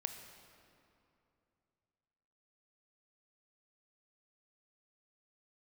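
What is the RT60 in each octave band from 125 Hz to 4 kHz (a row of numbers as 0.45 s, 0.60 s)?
3.4 s, 3.0 s, 2.8 s, 2.7 s, 2.2 s, 1.8 s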